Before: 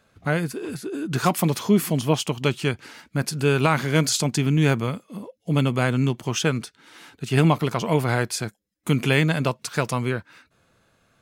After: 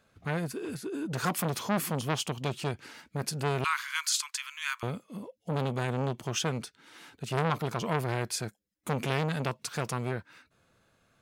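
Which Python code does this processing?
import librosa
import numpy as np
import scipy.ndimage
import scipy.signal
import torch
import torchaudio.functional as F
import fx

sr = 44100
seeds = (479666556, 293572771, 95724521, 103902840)

y = fx.steep_highpass(x, sr, hz=1000.0, slope=72, at=(3.64, 4.83))
y = fx.transformer_sat(y, sr, knee_hz=1300.0)
y = y * librosa.db_to_amplitude(-5.0)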